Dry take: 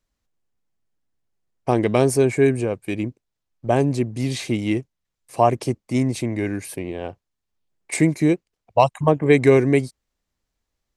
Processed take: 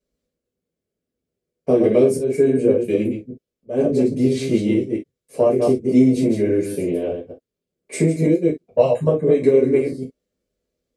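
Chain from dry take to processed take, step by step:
delay that plays each chunk backwards 118 ms, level −5.5 dB
0:02.06–0:03.84: volume swells 344 ms
low shelf with overshoot 680 Hz +8.5 dB, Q 3
downward compressor 12 to 1, threshold −7 dBFS, peak gain reduction 11 dB
high-pass filter 160 Hz 6 dB per octave
reverb whose tail is shaped and stops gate 90 ms falling, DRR −6.5 dB
level −10.5 dB

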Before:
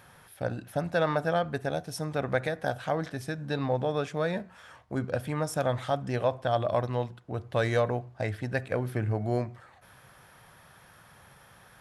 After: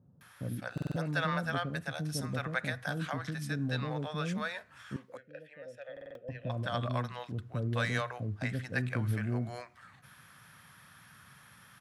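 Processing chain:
high-pass filter 100 Hz
flat-topped bell 550 Hz −8.5 dB
0:04.96–0:06.29: formant filter e
multiband delay without the direct sound lows, highs 210 ms, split 520 Hz
buffer that repeats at 0:00.73/0:05.92, samples 2,048, times 4

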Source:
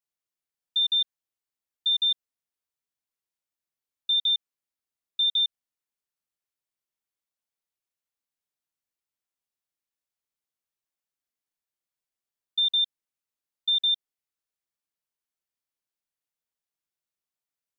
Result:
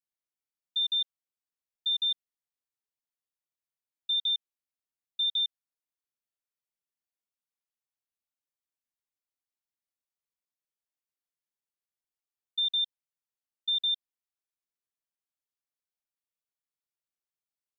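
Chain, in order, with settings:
dynamic equaliser 3,500 Hz, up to +3 dB, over −32 dBFS, Q 2.4
level −7.5 dB

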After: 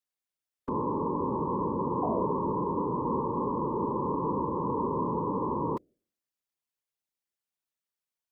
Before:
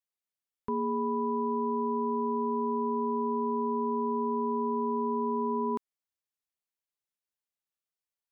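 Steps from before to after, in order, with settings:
sound drawn into the spectrogram fall, 0:02.02–0:02.33, 360–780 Hz −33 dBFS
hum removal 159 Hz, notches 4
random phases in short frames

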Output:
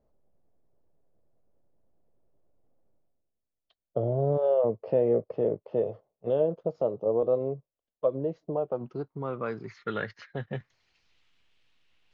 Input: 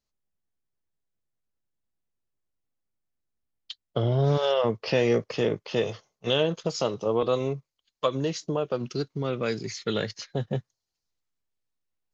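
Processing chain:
high-shelf EQ 2,500 Hz +9 dB
reversed playback
upward compression, threshold −41 dBFS
reversed playback
low-pass filter sweep 600 Hz → 2,900 Hz, 0:08.24–0:11.24
level −6.5 dB

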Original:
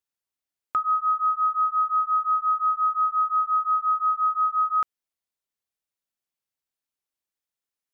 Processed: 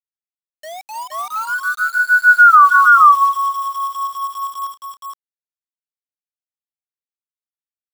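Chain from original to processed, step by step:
turntable start at the beginning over 1.82 s
source passing by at 0:02.55, 50 m/s, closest 4.4 metres
high-pass filter 1,200 Hz 12 dB per octave
reverb reduction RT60 0.82 s
gate on every frequency bin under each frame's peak −20 dB strong
bit reduction 10 bits
multi-tap delay 303/469 ms −16.5/−3.5 dB
boost into a limiter +27 dB
level −1 dB

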